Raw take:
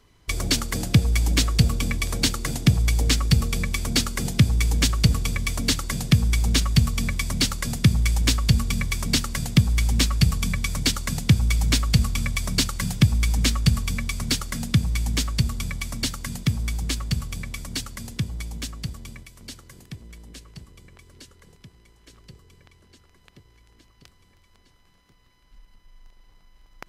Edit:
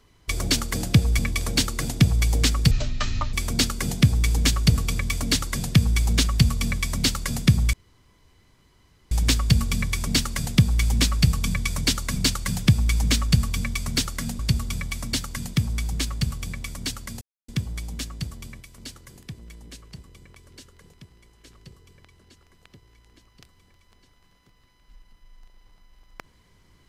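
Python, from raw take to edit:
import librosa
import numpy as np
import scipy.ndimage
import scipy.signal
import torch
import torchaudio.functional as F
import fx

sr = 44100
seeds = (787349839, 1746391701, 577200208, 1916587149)

y = fx.edit(x, sr, fx.cut(start_s=1.19, length_s=0.66),
    fx.speed_span(start_s=3.37, length_s=0.33, speed=0.53),
    fx.insert_room_tone(at_s=8.1, length_s=1.38),
    fx.cut(start_s=11.15, length_s=1.35),
    fx.cut(start_s=14.73, length_s=0.56),
    fx.insert_silence(at_s=18.11, length_s=0.27), tone=tone)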